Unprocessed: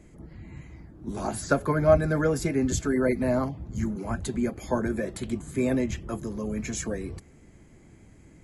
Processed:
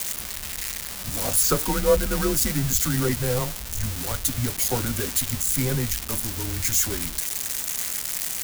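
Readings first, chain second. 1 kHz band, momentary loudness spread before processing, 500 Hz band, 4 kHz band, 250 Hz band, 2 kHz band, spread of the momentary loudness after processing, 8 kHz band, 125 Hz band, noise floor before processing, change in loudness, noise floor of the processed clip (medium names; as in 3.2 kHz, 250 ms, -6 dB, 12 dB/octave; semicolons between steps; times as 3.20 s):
+0.5 dB, 19 LU, -1.5 dB, +15.5 dB, -2.5 dB, +3.0 dB, 8 LU, +15.5 dB, +3.0 dB, -53 dBFS, +4.0 dB, -34 dBFS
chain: zero-crossing glitches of -14.5 dBFS; frequency shift -120 Hz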